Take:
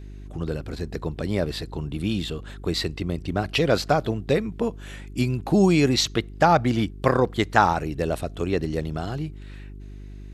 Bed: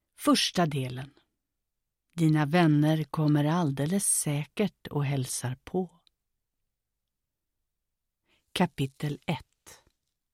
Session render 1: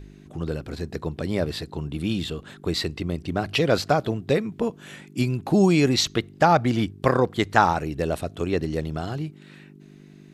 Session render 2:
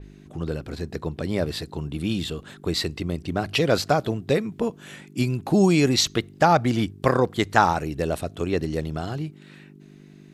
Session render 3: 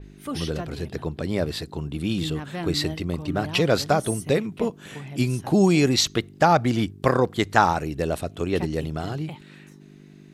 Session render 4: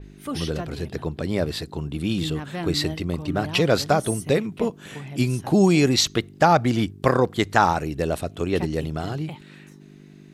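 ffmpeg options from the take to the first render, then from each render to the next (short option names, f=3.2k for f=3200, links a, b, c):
-af "bandreject=f=50:t=h:w=4,bandreject=f=100:t=h:w=4"
-af "adynamicequalizer=threshold=0.0126:dfrequency=5100:dqfactor=0.7:tfrequency=5100:tqfactor=0.7:attack=5:release=100:ratio=0.375:range=2:mode=boostabove:tftype=highshelf"
-filter_complex "[1:a]volume=-9dB[a];[0:a][a]amix=inputs=2:normalize=0"
-af "volume=1dB,alimiter=limit=-3dB:level=0:latency=1"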